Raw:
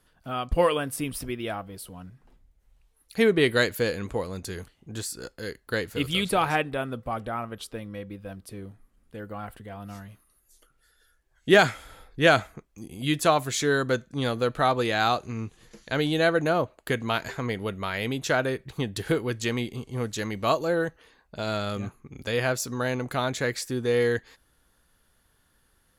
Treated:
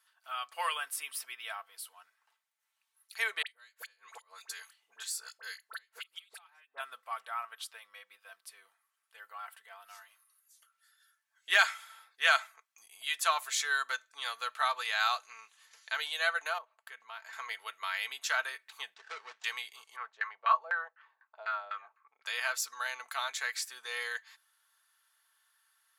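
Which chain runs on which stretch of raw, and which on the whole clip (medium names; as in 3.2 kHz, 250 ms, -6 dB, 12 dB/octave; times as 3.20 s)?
3.42–6.80 s: high-pass 85 Hz 24 dB/octave + inverted gate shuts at -16 dBFS, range -31 dB + phase dispersion highs, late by 50 ms, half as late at 1.4 kHz
16.58–17.33 s: treble shelf 2 kHz -11 dB + compression 2:1, threshold -39 dBFS
18.94–19.44 s: median filter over 41 samples + low-pass 7 kHz 24 dB/octave
19.96–22.26 s: tilt shelf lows -7 dB, about 1.4 kHz + LFO low-pass saw down 4 Hz 510–1700 Hz
whole clip: high-pass 990 Hz 24 dB/octave; comb 4.5 ms, depth 45%; trim -3.5 dB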